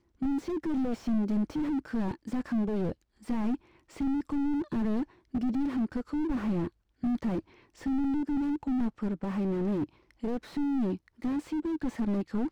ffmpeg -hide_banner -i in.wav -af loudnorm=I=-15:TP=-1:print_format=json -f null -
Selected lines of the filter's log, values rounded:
"input_i" : "-31.9",
"input_tp" : "-18.9",
"input_lra" : "1.1",
"input_thresh" : "-42.0",